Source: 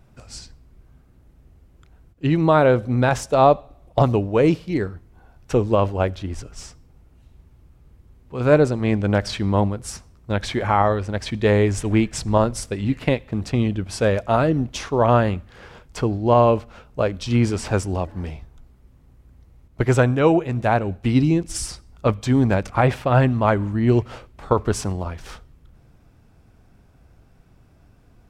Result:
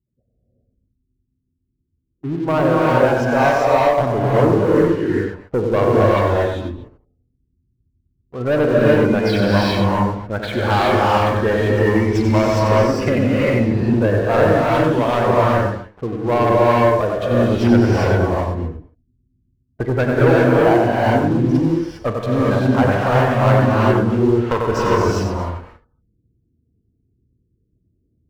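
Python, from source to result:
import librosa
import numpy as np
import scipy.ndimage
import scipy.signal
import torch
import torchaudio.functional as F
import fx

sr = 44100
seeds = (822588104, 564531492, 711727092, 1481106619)

y = scipy.signal.sosfilt(scipy.signal.butter(2, 3900.0, 'lowpass', fs=sr, output='sos'), x)
y = fx.env_lowpass(y, sr, base_hz=380.0, full_db=-17.5)
y = scipy.signal.sosfilt(scipy.signal.butter(2, 46.0, 'highpass', fs=sr, output='sos'), y)
y = fx.spec_gate(y, sr, threshold_db=-20, keep='strong')
y = fx.low_shelf(y, sr, hz=380.0, db=-7.5)
y = fx.echo_multitap(y, sr, ms=(40, 93, 231), db=(-16.5, -6.5, -17.5))
y = fx.rider(y, sr, range_db=4, speed_s=2.0)
y = fx.leveller(y, sr, passes=3)
y = fx.rev_gated(y, sr, seeds[0], gate_ms=430, shape='rising', drr_db=-5.0)
y = y * librosa.db_to_amplitude(-7.5)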